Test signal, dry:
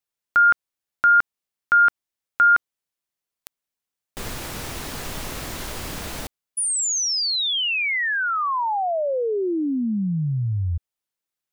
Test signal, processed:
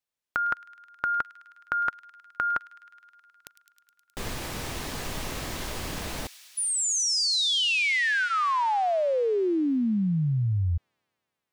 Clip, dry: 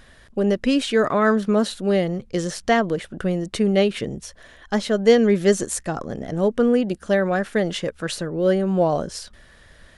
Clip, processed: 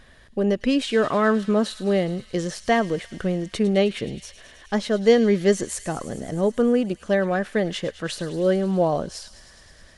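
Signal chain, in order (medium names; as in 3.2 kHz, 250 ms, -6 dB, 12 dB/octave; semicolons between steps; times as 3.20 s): treble shelf 8.6 kHz -5.5 dB; band-stop 1.4 kHz, Q 21; feedback echo behind a high-pass 105 ms, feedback 82%, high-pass 2.9 kHz, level -13 dB; trim -1.5 dB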